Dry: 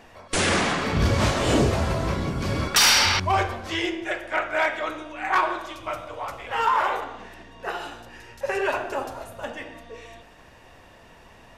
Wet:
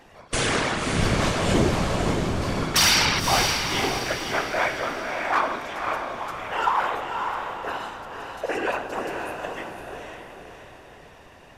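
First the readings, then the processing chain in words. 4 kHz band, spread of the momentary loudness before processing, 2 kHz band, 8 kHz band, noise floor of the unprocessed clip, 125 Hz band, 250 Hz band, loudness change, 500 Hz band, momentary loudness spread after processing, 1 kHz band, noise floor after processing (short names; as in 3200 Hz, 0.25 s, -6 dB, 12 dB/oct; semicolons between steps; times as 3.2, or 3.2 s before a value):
0.0 dB, 17 LU, 0.0 dB, 0.0 dB, -50 dBFS, -1.0 dB, +0.5 dB, -0.5 dB, 0.0 dB, 16 LU, 0.0 dB, -48 dBFS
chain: whisperiser; diffused feedback echo 0.544 s, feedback 44%, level -5 dB; gain -1.5 dB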